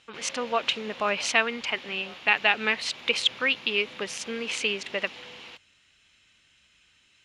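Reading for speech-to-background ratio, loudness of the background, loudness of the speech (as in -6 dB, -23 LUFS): 16.0 dB, -42.5 LUFS, -26.5 LUFS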